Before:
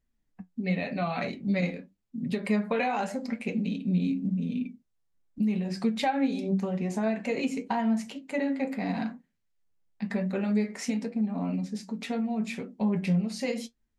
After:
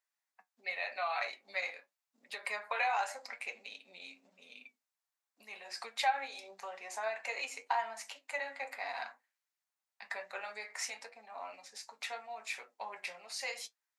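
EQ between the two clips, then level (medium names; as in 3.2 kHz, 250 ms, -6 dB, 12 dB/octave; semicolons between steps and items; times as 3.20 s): high-pass 770 Hz 24 dB/octave; peaking EQ 3.1 kHz -4 dB 0.32 oct; 0.0 dB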